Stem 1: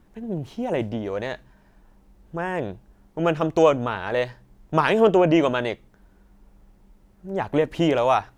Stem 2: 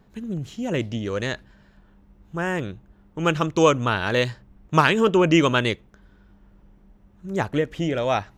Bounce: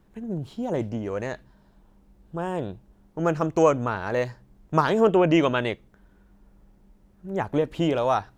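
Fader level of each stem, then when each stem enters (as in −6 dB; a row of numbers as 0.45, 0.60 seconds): −4.5, −11.0 decibels; 0.00, 0.00 seconds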